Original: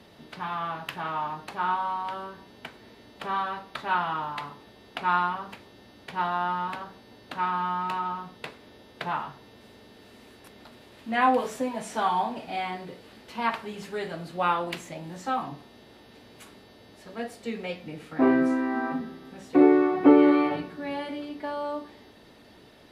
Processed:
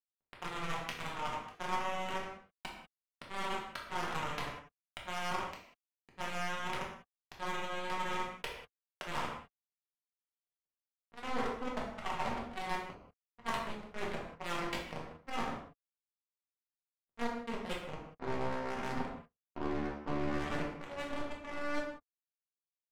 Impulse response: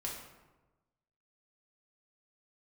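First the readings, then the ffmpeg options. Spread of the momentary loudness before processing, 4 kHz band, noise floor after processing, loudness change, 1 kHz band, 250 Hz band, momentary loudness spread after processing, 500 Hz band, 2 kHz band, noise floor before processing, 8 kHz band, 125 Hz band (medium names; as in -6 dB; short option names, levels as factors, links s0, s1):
20 LU, -3.5 dB, under -85 dBFS, -12.5 dB, -11.5 dB, -16.5 dB, 11 LU, -12.5 dB, -6.5 dB, -53 dBFS, -2.5 dB, -4.0 dB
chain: -filter_complex "[0:a]areverse,acompressor=threshold=0.0224:ratio=16,areverse,aeval=exprs='0.126*(cos(1*acos(clip(val(0)/0.126,-1,1)))-cos(1*PI/2))+0.0316*(cos(2*acos(clip(val(0)/0.126,-1,1)))-cos(2*PI/2))':c=same,acrusher=bits=4:mix=0:aa=0.5,adynamicsmooth=sensitivity=8:basefreq=1000[s0];[1:a]atrim=start_sample=2205,afade=t=out:st=0.25:d=0.01,atrim=end_sample=11466[s1];[s0][s1]afir=irnorm=-1:irlink=0,volume=1.26"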